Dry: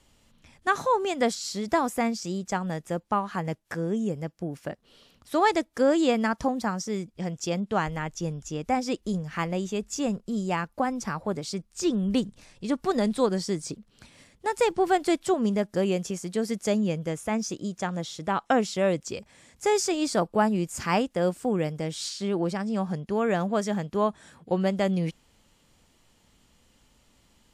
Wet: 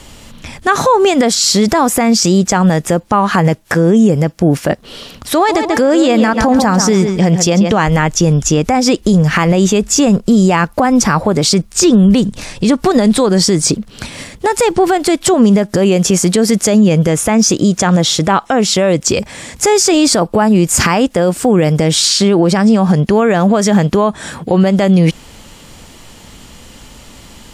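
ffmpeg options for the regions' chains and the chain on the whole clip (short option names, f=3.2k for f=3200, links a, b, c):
-filter_complex "[0:a]asettb=1/sr,asplit=3[a][b][c];[a]atrim=end=5.354[d];[b]atrim=start=5.35:end=7.85,asetpts=PTS-STARTPTS,afade=t=in:d=0.004:c=qsin,afade=t=out:st=2.496:d=0.004:c=qsin,bandreject=f=1.4k:w=29,asplit=2[e][f];[f]adelay=138,lowpass=f=4.9k:p=1,volume=-11.5dB,asplit=2[g][h];[h]adelay=138,lowpass=f=4.9k:p=1,volume=0.31,asplit=2[i][j];[j]adelay=138,lowpass=f=4.9k:p=1,volume=0.31[k];[e][g][i][k]amix=inputs=4:normalize=0,atrim=end_sample=110250[l];[c]atrim=start=7.846[m];[d][l]acrossfade=d=0.004:c1=hsin:c2=qsin[n];[n][m]acrossfade=d=0.004:c1=qsin:c2=hsin,acompressor=threshold=-27dB:ratio=6,alimiter=level_in=26.5dB:limit=-1dB:release=50:level=0:latency=1,volume=-1dB"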